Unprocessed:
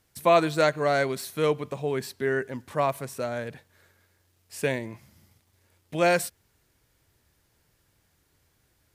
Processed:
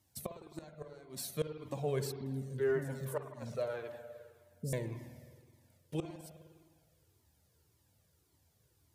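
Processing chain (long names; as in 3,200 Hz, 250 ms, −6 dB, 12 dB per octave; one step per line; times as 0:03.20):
high-pass filter 69 Hz 24 dB per octave
parametric band 1,800 Hz −9 dB 1.8 octaves
0:02.12–0:04.73: three-band delay without the direct sound lows, highs, mids 140/380 ms, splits 310/4,800 Hz
gate with flip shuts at −19 dBFS, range −26 dB
convolution reverb RT60 1.8 s, pre-delay 52 ms, DRR 7.5 dB
flanger whose copies keep moving one way falling 1.8 Hz
level +1 dB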